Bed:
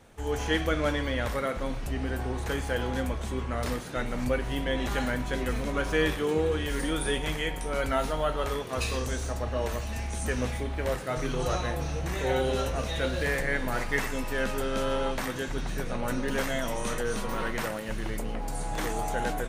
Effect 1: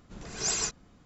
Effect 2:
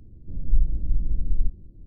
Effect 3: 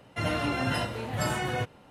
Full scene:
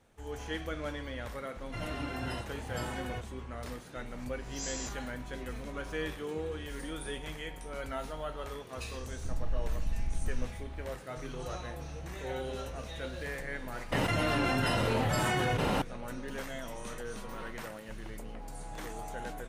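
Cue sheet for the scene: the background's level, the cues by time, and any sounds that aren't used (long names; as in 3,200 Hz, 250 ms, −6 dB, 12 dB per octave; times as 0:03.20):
bed −10.5 dB
0:01.56: mix in 3 −10 dB
0:04.18: mix in 1 −17.5 dB + every bin's largest magnitude spread in time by 120 ms
0:08.97: mix in 2 −2.5 dB + downward compressor, threshold −24 dBFS
0:13.92: mix in 3 −3.5 dB + envelope flattener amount 100%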